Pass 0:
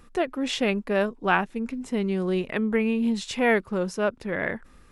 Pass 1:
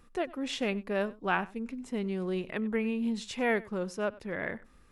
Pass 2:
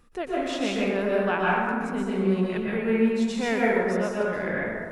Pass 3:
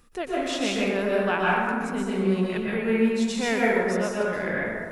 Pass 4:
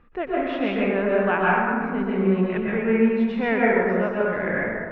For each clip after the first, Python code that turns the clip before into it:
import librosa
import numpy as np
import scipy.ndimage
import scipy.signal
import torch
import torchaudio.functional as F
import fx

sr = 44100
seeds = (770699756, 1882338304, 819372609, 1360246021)

y1 = x + 10.0 ** (-21.0 / 20.0) * np.pad(x, (int(96 * sr / 1000.0), 0))[:len(x)]
y1 = y1 * 10.0 ** (-7.0 / 20.0)
y2 = fx.rev_plate(y1, sr, seeds[0], rt60_s=1.9, hf_ratio=0.4, predelay_ms=110, drr_db=-6.0)
y3 = fx.high_shelf(y2, sr, hz=3300.0, db=7.0)
y4 = scipy.signal.sosfilt(scipy.signal.butter(4, 2400.0, 'lowpass', fs=sr, output='sos'), y3)
y4 = y4 * 10.0 ** (3.0 / 20.0)